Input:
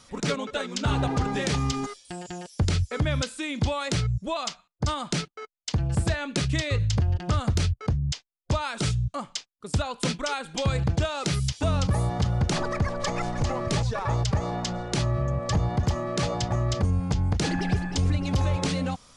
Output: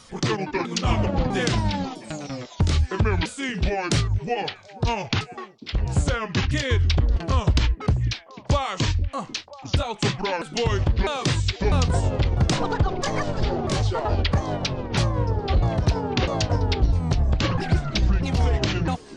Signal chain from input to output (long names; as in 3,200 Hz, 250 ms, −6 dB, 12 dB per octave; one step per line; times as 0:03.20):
pitch shifter swept by a sawtooth −8.5 semitones, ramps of 651 ms
echo through a band-pass that steps 490 ms, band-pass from 290 Hz, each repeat 1.4 octaves, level −12 dB
level +5 dB